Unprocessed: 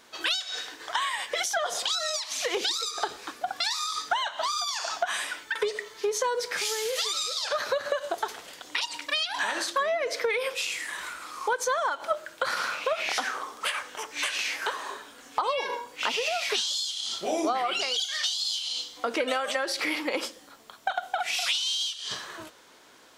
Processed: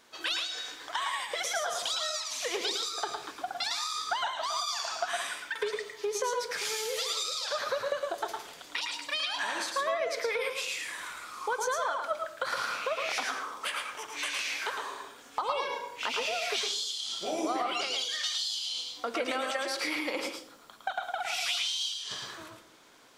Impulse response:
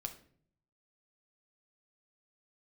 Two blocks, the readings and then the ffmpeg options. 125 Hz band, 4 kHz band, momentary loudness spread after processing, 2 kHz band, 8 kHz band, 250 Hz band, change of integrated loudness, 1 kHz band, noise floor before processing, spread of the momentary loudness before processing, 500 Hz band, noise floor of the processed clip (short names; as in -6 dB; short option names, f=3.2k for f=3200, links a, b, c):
n/a, -3.5 dB, 8 LU, -3.5 dB, -3.5 dB, -3.0 dB, -3.5 dB, -3.0 dB, -51 dBFS, 7 LU, -3.5 dB, -52 dBFS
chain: -filter_complex "[0:a]asplit=2[a][b];[1:a]atrim=start_sample=2205,adelay=109[c];[b][c]afir=irnorm=-1:irlink=0,volume=-1dB[d];[a][d]amix=inputs=2:normalize=0,volume=-5dB"